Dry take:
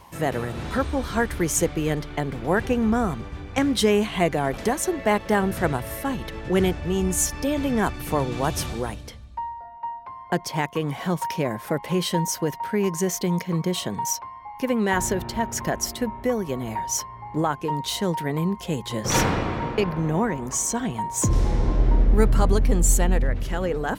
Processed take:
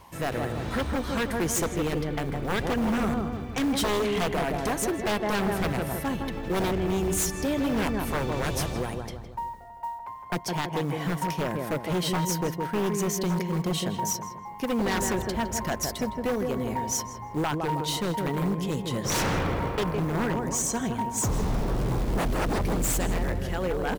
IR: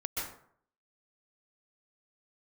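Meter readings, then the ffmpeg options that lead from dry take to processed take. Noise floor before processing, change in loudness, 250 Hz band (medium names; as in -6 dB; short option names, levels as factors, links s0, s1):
-41 dBFS, -3.5 dB, -3.0 dB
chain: -filter_complex "[0:a]acrusher=bits=7:mode=log:mix=0:aa=0.000001,asplit=2[s0][s1];[s1]adelay=161,lowpass=f=1400:p=1,volume=0.562,asplit=2[s2][s3];[s3]adelay=161,lowpass=f=1400:p=1,volume=0.51,asplit=2[s4][s5];[s5]adelay=161,lowpass=f=1400:p=1,volume=0.51,asplit=2[s6][s7];[s7]adelay=161,lowpass=f=1400:p=1,volume=0.51,asplit=2[s8][s9];[s9]adelay=161,lowpass=f=1400:p=1,volume=0.51,asplit=2[s10][s11];[s11]adelay=161,lowpass=f=1400:p=1,volume=0.51[s12];[s0][s2][s4][s6][s8][s10][s12]amix=inputs=7:normalize=0,aeval=exprs='0.126*(abs(mod(val(0)/0.126+3,4)-2)-1)':c=same,volume=0.75"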